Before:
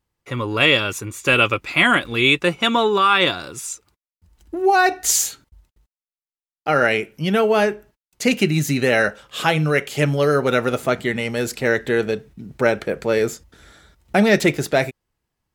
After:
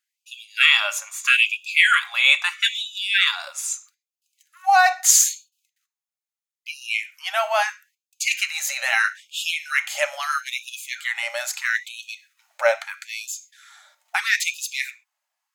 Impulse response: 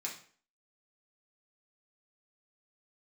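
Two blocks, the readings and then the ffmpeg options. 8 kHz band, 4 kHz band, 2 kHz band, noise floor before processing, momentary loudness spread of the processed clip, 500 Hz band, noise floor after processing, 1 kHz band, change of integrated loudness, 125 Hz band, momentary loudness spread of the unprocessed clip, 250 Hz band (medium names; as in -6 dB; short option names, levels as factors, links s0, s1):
+4.0 dB, +0.5 dB, +0.5 dB, under -85 dBFS, 17 LU, -12.0 dB, under -85 dBFS, -3.0 dB, -1.5 dB, under -40 dB, 11 LU, under -40 dB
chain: -filter_complex "[0:a]asplit=2[s0][s1];[s1]equalizer=f=6400:w=7.9:g=14[s2];[1:a]atrim=start_sample=2205,atrim=end_sample=6174[s3];[s2][s3]afir=irnorm=-1:irlink=0,volume=0.376[s4];[s0][s4]amix=inputs=2:normalize=0,afftfilt=real='re*gte(b*sr/1024,520*pow(2500/520,0.5+0.5*sin(2*PI*0.77*pts/sr)))':imag='im*gte(b*sr/1024,520*pow(2500/520,0.5+0.5*sin(2*PI*0.77*pts/sr)))':win_size=1024:overlap=0.75,volume=0.891"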